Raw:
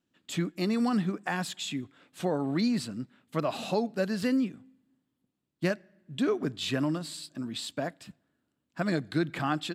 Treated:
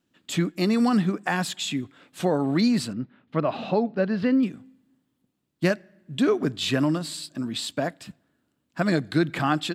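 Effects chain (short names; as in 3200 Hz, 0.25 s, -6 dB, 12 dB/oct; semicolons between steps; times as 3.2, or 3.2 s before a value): 2.93–4.43 air absorption 300 m; gain +6 dB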